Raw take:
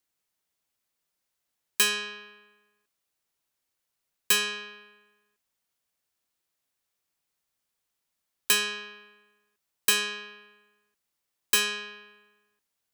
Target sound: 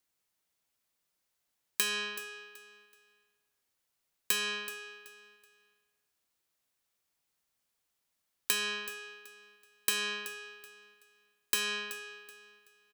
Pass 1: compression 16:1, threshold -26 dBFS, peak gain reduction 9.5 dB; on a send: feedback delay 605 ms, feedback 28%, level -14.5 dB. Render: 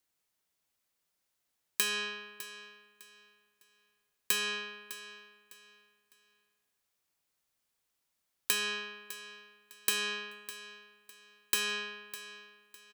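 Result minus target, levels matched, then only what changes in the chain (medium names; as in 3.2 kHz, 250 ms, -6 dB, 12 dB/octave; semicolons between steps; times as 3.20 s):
echo 227 ms late
change: feedback delay 378 ms, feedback 28%, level -14.5 dB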